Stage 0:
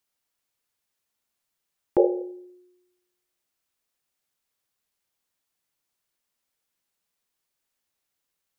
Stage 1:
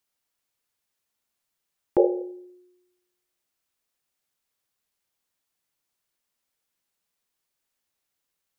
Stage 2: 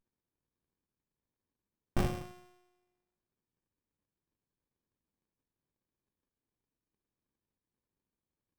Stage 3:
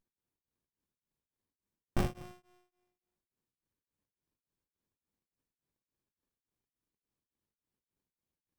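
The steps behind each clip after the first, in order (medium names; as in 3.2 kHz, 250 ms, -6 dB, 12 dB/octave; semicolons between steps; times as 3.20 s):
no audible change
sorted samples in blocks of 16 samples; Chebyshev shaper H 5 -22 dB, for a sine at -7.5 dBFS; sliding maximum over 65 samples; trim -6.5 dB
tremolo of two beating tones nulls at 3.5 Hz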